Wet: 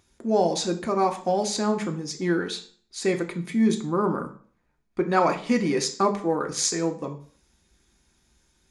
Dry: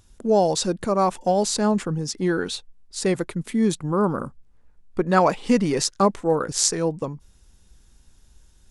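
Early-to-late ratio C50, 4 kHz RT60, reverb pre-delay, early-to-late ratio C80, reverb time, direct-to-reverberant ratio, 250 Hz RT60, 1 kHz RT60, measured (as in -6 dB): 13.0 dB, 0.40 s, 3 ms, 17.0 dB, 0.45 s, 4.5 dB, 0.50 s, 0.45 s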